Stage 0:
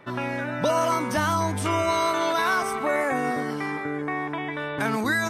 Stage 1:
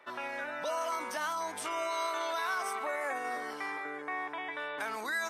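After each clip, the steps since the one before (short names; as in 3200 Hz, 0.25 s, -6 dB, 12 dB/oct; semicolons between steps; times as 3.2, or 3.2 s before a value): limiter -18.5 dBFS, peak gain reduction 6.5 dB; HPF 570 Hz 12 dB/oct; gain -5.5 dB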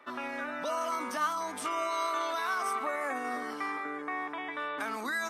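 small resonant body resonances 250/1200 Hz, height 11 dB, ringing for 45 ms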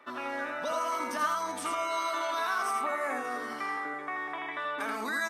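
echo 83 ms -4 dB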